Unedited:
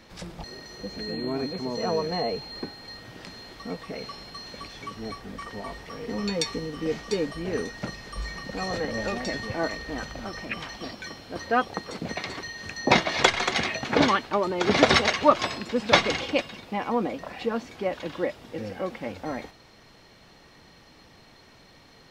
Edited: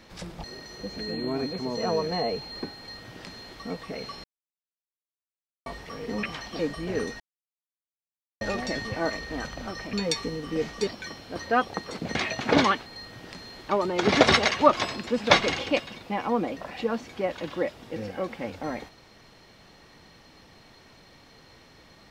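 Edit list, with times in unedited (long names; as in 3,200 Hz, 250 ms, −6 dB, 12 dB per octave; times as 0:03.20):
0:02.78–0:03.60: duplicate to 0:14.30
0:04.24–0:05.66: silence
0:06.23–0:07.17: swap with 0:10.51–0:10.87
0:07.78–0:08.99: silence
0:12.15–0:13.59: remove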